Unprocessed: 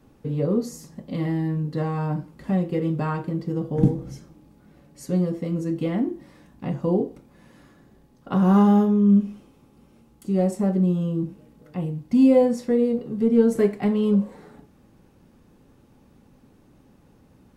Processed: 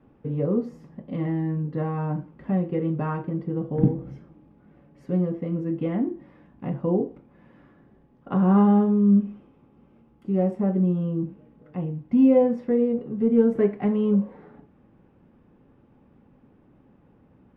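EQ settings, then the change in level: distance through air 400 m; bass shelf 72 Hz -7 dB; peaking EQ 4.2 kHz -9 dB 0.29 oct; 0.0 dB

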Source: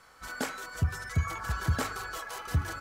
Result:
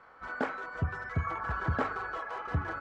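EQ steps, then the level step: low-pass 1.5 kHz 12 dB/octave; bass shelf 180 Hz -11 dB; +4.5 dB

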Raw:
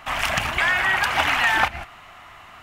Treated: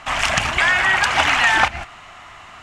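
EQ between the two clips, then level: resonant low-pass 7.5 kHz, resonance Q 1.6; +3.5 dB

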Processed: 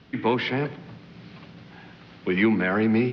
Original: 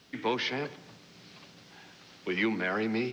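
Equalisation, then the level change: low-pass 5.5 kHz 24 dB/octave; tone controls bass +8 dB, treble -14 dB; +6.0 dB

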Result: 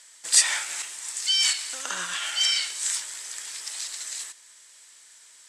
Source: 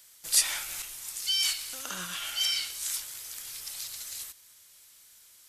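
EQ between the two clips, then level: cabinet simulation 300–8700 Hz, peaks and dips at 940 Hz +4 dB, 1.8 kHz +7 dB, 7.9 kHz +7 dB; +4.5 dB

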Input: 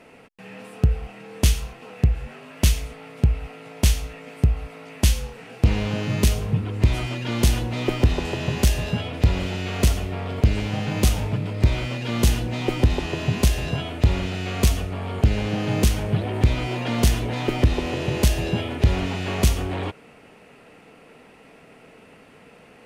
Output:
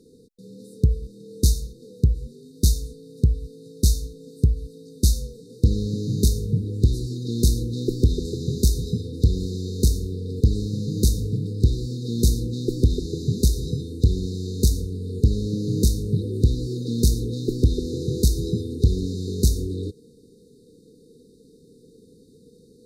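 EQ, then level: brick-wall FIR band-stop 510–3600 Hz; 0.0 dB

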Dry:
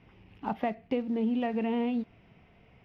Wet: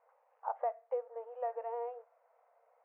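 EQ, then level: brick-wall FIR high-pass 460 Hz; low-pass 1.3 kHz 24 dB/octave; distance through air 170 m; -1.5 dB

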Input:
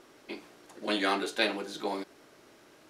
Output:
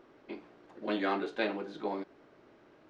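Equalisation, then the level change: tape spacing loss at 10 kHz 31 dB; 0.0 dB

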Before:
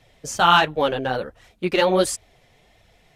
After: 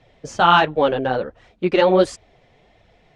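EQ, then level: distance through air 110 m; peaking EQ 400 Hz +4.5 dB 2.9 oct; 0.0 dB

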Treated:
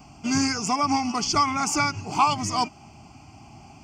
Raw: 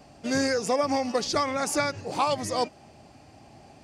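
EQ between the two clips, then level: static phaser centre 2.6 kHz, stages 8; +7.0 dB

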